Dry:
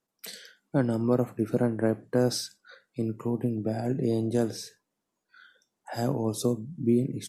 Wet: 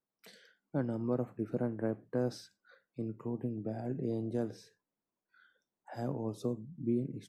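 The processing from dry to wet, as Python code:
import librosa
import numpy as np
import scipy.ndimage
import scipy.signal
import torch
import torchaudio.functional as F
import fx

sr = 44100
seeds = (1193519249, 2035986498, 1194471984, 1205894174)

y = fx.peak_eq(x, sr, hz=11000.0, db=-13.5, octaves=2.4)
y = F.gain(torch.from_numpy(y), -8.5).numpy()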